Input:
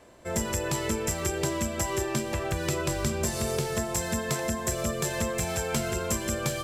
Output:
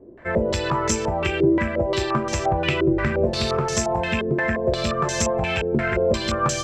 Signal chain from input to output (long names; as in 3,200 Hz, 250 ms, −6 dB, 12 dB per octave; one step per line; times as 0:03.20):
loose part that buzzes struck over −31 dBFS, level −31 dBFS
low-pass on a step sequencer 5.7 Hz 360–6,200 Hz
level +5 dB